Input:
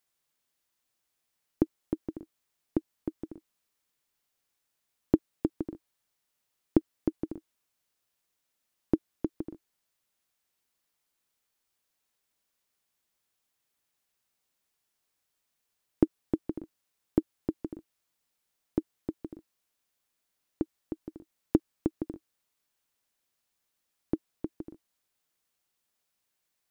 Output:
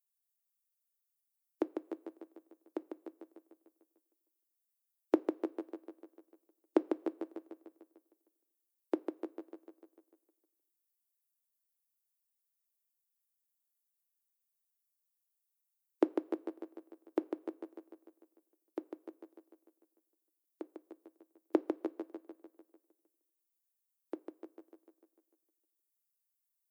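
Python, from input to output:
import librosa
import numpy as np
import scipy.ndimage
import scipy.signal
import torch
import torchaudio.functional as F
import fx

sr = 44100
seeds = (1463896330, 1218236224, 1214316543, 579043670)

p1 = fx.bin_expand(x, sr, power=2.0)
p2 = scipy.signal.sosfilt(scipy.signal.butter(4, 410.0, 'highpass', fs=sr, output='sos'), p1)
p3 = p2 + fx.echo_feedback(p2, sr, ms=149, feedback_pct=59, wet_db=-6.0, dry=0)
p4 = fx.rev_double_slope(p3, sr, seeds[0], early_s=0.22, late_s=1.7, knee_db=-18, drr_db=14.5)
y = p4 * librosa.db_to_amplitude(5.0)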